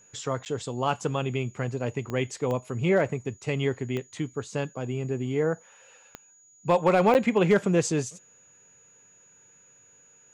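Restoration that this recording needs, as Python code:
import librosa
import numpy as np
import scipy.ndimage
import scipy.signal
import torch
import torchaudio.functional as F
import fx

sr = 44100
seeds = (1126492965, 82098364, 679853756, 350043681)

y = fx.fix_declip(x, sr, threshold_db=-12.5)
y = fx.fix_declick_ar(y, sr, threshold=10.0)
y = fx.notch(y, sr, hz=6800.0, q=30.0)
y = fx.fix_interpolate(y, sr, at_s=(0.45, 7.14), length_ms=9.7)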